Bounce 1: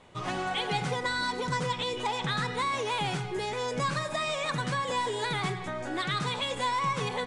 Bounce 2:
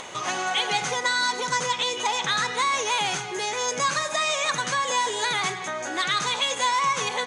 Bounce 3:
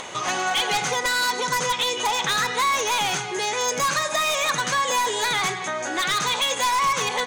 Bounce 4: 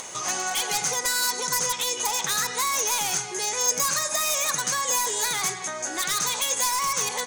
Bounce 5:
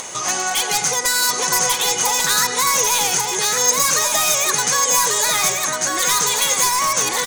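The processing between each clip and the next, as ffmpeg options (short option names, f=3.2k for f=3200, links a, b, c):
-af "highpass=f=860:p=1,equalizer=f=6.4k:w=7.4:g=14,acompressor=mode=upward:threshold=-36dB:ratio=2.5,volume=8dB"
-af "aeval=exprs='0.119*(abs(mod(val(0)/0.119+3,4)-2)-1)':c=same,volume=3dB"
-af "aexciter=amount=3.4:drive=6.6:freq=4.8k,volume=-6dB"
-af "aecho=1:1:1143:0.631,volume=6.5dB"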